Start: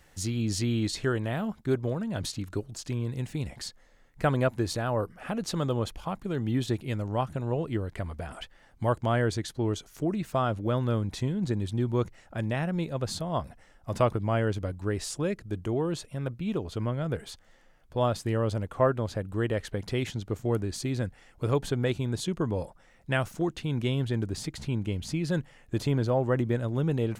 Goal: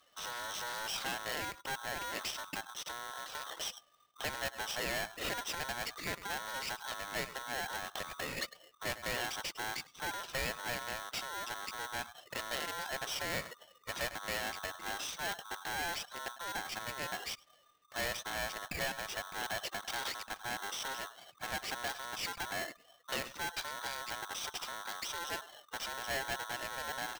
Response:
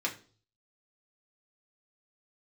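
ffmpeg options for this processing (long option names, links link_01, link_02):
-filter_complex "[0:a]acompressor=threshold=-29dB:ratio=5,asplit=2[link_01][link_02];[link_02]aecho=0:1:103:0.0794[link_03];[link_01][link_03]amix=inputs=2:normalize=0,aeval=exprs='(tanh(79.4*val(0)+0.25)-tanh(0.25))/79.4':channel_layout=same,aresample=11025,aresample=44100,asplit=2[link_04][link_05];[link_05]aeval=exprs='val(0)*gte(abs(val(0)),0.00299)':channel_layout=same,volume=-10dB[link_06];[link_04][link_06]amix=inputs=2:normalize=0,acrossover=split=3200[link_07][link_08];[link_08]acompressor=threshold=-53dB:ratio=4:attack=1:release=60[link_09];[link_07][link_09]amix=inputs=2:normalize=0,aemphasis=mode=production:type=75kf,afftdn=noise_reduction=16:noise_floor=-51,bass=frequency=250:gain=-14,treble=frequency=4000:gain=0,aeval=exprs='val(0)*sgn(sin(2*PI*1200*n/s))':channel_layout=same,volume=4dB"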